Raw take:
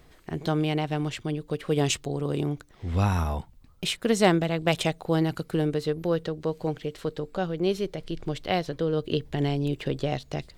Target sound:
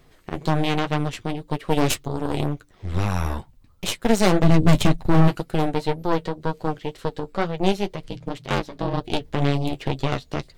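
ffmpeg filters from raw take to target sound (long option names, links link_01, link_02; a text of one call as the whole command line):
ffmpeg -i in.wav -filter_complex "[0:a]asplit=3[link_01][link_02][link_03];[link_01]afade=type=out:start_time=4.42:duration=0.02[link_04];[link_02]asubboost=boost=11.5:cutoff=150,afade=type=in:start_time=4.42:duration=0.02,afade=type=out:start_time=5.27:duration=0.02[link_05];[link_03]afade=type=in:start_time=5.27:duration=0.02[link_06];[link_04][link_05][link_06]amix=inputs=3:normalize=0,aeval=exprs='0.531*(cos(1*acos(clip(val(0)/0.531,-1,1)))-cos(1*PI/2))+0.106*(cos(3*acos(clip(val(0)/0.531,-1,1)))-cos(3*PI/2))+0.0376*(cos(4*acos(clip(val(0)/0.531,-1,1)))-cos(4*PI/2))+0.0422*(cos(8*acos(clip(val(0)/0.531,-1,1)))-cos(8*PI/2))':channel_layout=same,asettb=1/sr,asplit=3[link_07][link_08][link_09];[link_07]atrim=end=8.084[link_10];[link_08]atrim=start=8.08:end=9.01,asetpts=PTS-STARTPTS,afade=type=in:duration=0.004:curve=qsin,afade=type=out:start_time=0.926:duration=0.004:curve=qsin,aeval=exprs='val(0)*sin(2*PI*140*n/s)':channel_layout=same[link_11];[link_09]atrim=start=9.006[link_12];[link_10][link_11]acrossfade=duration=0.004:curve1=hsin:curve2=qsin[link_13];[link_13][link_12]acrossfade=duration=0.004:curve1=qsin:curve2=hsin,asplit=2[link_14][link_15];[link_15]acontrast=74,volume=2.5dB[link_16];[link_14][link_16]amix=inputs=2:normalize=0,asoftclip=type=hard:threshold=-3dB,flanger=delay=7.5:depth=3.3:regen=-35:speed=2:shape=sinusoidal,asettb=1/sr,asplit=3[link_17][link_18][link_19];[link_17]atrim=end=2.434[link_20];[link_18]atrim=start=2.43:end=3.24,asetpts=PTS-STARTPTS,afade=type=in:duration=0.004:curve=qsin,afade=type=out:start_time=0.806:duration=0.004:curve=qsin,acompressor=threshold=-17dB:ratio=6[link_21];[link_19]atrim=start=3.236[link_22];[link_20][link_21]acrossfade=duration=0.004:curve1=hsin:curve2=qsin[link_23];[link_23][link_22]acrossfade=duration=0.004:curve1=qsin:curve2=hsin" out.wav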